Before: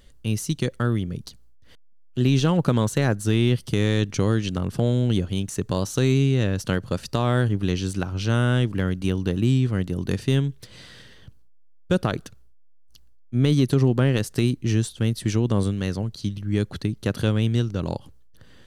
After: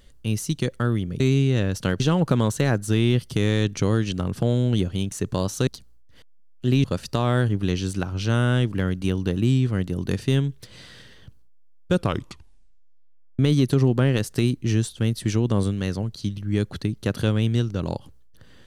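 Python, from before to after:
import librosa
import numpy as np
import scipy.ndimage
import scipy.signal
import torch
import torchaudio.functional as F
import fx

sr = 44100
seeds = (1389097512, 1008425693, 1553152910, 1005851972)

y = fx.edit(x, sr, fx.swap(start_s=1.2, length_s=1.17, other_s=6.04, other_length_s=0.8),
    fx.tape_stop(start_s=11.93, length_s=1.46), tone=tone)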